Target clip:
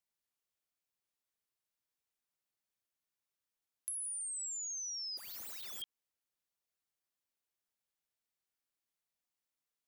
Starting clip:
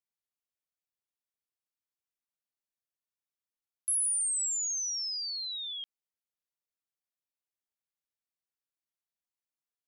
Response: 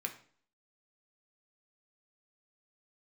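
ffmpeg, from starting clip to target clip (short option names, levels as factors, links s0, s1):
-filter_complex "[0:a]asettb=1/sr,asplit=3[s0][s1][s2];[s0]atrim=end=5.174[s3];[s1]atrim=start=5.17:end=5.82,asetpts=PTS-STARTPTS,afade=t=in:d=0.004:c=qsin,afade=t=out:st=0.646:d=0.004:c=qsin,aeval=exprs='(mod(112*val(0)+1,2)-1)/112':c=same[s4];[s2]atrim=start=5.816[s5];[s3][s4]acrossfade=d=0.004:c1=hsin:c2=qsin[s6];[s6][s5]acrossfade=d=0.004:c1=qsin:c2=hsin,acompressor=threshold=0.00708:ratio=6,volume=1.26"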